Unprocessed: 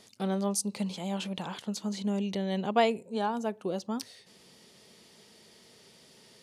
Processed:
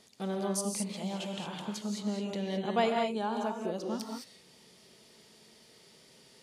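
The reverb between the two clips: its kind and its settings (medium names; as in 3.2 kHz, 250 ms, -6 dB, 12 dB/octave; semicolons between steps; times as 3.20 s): gated-style reverb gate 240 ms rising, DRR 1 dB; trim -4 dB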